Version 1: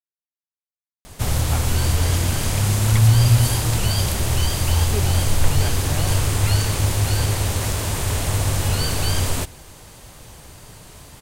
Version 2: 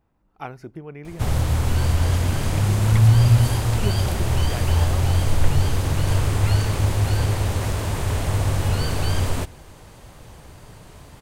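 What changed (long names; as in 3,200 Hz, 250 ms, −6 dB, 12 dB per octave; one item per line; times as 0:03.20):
speech: entry −1.10 s
master: add high-shelf EQ 3,200 Hz −10 dB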